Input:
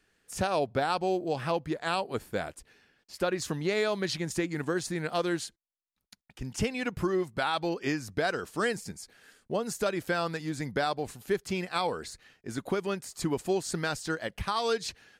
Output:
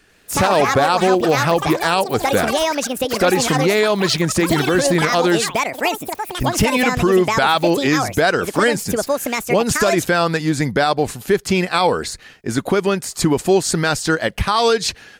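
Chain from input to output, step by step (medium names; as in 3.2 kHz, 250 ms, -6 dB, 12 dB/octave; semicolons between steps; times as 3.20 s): ever faster or slower copies 93 ms, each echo +7 st, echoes 3, each echo -6 dB; loudness maximiser +20 dB; trim -4.5 dB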